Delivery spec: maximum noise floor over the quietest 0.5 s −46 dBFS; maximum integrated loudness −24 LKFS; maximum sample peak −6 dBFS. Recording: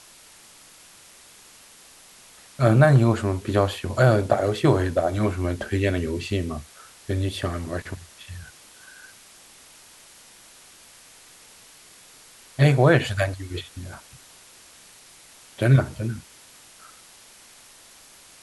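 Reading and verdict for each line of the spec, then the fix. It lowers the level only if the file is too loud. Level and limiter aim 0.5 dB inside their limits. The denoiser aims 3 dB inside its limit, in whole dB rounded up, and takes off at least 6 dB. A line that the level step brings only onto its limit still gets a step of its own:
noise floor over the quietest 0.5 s −50 dBFS: in spec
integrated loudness −22.0 LKFS: out of spec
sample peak −5.0 dBFS: out of spec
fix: level −2.5 dB

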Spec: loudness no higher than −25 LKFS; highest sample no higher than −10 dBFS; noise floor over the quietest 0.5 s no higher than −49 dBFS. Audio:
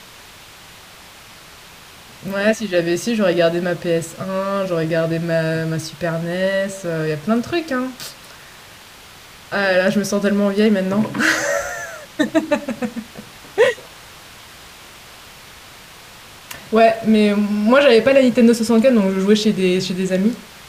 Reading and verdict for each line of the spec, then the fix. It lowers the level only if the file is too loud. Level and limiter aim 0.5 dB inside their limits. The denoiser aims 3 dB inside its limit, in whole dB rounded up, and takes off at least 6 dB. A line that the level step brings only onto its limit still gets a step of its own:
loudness −17.5 LKFS: out of spec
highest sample −2.5 dBFS: out of spec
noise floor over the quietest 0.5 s −42 dBFS: out of spec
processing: level −8 dB

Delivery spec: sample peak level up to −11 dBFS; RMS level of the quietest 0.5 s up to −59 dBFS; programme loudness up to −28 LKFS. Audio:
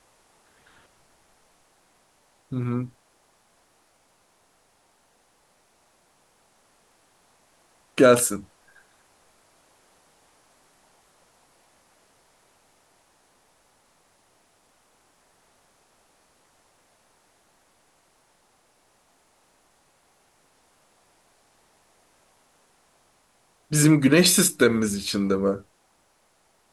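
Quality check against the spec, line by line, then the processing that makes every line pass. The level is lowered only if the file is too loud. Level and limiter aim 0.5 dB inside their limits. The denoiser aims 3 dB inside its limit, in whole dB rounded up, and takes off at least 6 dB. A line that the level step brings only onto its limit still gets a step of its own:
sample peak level −6.0 dBFS: out of spec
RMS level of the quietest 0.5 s −64 dBFS: in spec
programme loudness −21.0 LKFS: out of spec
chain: level −7.5 dB

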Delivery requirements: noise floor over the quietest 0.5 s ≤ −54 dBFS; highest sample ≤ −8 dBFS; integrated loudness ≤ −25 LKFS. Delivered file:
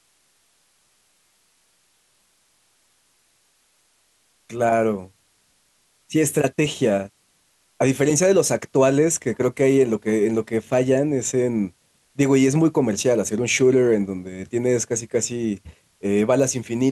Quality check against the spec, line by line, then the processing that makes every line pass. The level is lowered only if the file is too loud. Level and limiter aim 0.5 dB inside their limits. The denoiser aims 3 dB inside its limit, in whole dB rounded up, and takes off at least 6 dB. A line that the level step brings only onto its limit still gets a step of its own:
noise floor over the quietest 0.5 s −63 dBFS: in spec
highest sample −6.0 dBFS: out of spec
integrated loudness −20.5 LKFS: out of spec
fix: level −5 dB

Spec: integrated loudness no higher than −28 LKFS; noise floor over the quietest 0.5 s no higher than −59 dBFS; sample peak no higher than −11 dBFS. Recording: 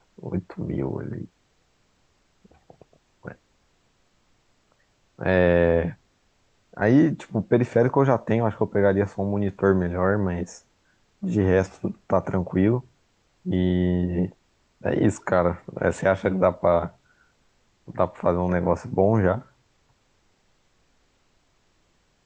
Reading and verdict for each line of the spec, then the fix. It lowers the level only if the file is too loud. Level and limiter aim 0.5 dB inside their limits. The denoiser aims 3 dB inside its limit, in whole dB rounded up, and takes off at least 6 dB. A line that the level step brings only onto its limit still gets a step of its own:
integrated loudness −23.5 LKFS: out of spec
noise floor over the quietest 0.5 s −66 dBFS: in spec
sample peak −5.0 dBFS: out of spec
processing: level −5 dB
brickwall limiter −11.5 dBFS

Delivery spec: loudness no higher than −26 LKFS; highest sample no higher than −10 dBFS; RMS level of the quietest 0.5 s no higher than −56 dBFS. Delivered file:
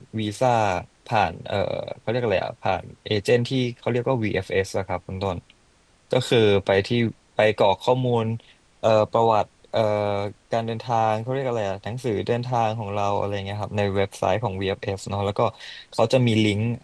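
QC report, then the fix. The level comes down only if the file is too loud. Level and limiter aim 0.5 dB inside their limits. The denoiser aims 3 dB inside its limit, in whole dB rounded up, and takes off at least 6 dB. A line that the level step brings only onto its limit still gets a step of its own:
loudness −23.5 LKFS: out of spec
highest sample −6.0 dBFS: out of spec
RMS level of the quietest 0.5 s −59 dBFS: in spec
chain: level −3 dB
brickwall limiter −10.5 dBFS

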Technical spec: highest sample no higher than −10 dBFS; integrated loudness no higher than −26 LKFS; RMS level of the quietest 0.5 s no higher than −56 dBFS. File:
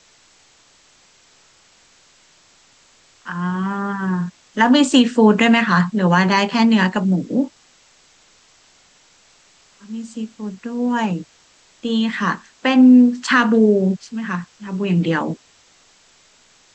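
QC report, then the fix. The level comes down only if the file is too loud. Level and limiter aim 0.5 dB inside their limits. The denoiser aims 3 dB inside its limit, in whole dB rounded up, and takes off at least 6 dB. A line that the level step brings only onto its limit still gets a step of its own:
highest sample −3.0 dBFS: out of spec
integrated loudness −17.0 LKFS: out of spec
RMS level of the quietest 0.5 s −54 dBFS: out of spec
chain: level −9.5 dB

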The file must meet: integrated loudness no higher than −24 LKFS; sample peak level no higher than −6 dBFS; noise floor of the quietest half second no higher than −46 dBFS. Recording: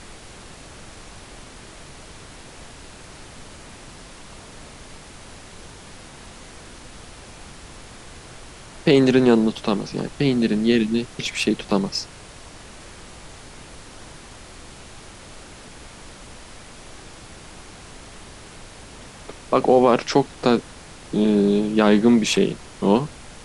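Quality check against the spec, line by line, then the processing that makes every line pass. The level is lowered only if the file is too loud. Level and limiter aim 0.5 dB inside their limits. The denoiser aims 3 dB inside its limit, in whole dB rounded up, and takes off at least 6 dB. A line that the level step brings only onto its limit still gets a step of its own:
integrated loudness −19.5 LKFS: out of spec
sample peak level −4.0 dBFS: out of spec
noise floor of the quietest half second −42 dBFS: out of spec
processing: level −5 dB

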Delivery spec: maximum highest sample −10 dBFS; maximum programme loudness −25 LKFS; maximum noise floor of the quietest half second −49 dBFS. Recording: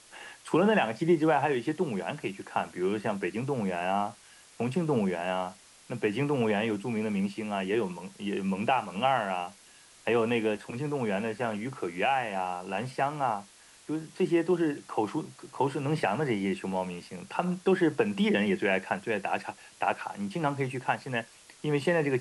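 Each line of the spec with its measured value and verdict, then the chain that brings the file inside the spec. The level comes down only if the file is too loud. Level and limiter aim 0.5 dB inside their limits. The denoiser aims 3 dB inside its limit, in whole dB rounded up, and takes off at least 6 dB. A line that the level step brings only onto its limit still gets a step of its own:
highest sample −11.5 dBFS: in spec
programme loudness −30.0 LKFS: in spec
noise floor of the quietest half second −56 dBFS: in spec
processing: no processing needed

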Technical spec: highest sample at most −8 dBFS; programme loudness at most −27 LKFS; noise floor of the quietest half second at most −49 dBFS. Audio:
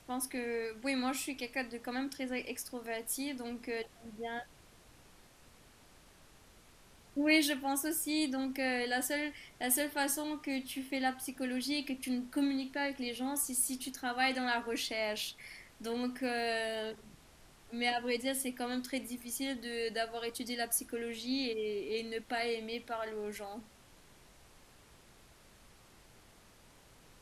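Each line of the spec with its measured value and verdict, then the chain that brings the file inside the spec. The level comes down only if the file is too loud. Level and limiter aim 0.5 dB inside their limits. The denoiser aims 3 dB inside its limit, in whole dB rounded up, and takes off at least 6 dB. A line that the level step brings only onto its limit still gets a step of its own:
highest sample −14.0 dBFS: in spec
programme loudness −35.5 LKFS: in spec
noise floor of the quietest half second −61 dBFS: in spec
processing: no processing needed

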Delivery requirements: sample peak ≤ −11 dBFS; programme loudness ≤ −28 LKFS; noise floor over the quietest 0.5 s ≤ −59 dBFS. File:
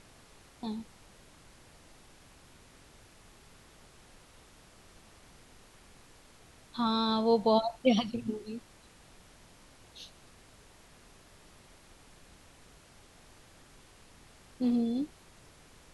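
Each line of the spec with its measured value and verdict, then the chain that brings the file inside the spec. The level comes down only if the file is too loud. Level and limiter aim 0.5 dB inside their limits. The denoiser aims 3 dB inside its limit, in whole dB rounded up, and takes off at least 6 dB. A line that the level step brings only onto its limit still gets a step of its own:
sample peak −12.0 dBFS: in spec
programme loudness −30.5 LKFS: in spec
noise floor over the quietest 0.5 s −57 dBFS: out of spec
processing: broadband denoise 6 dB, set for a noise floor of −57 dBFS

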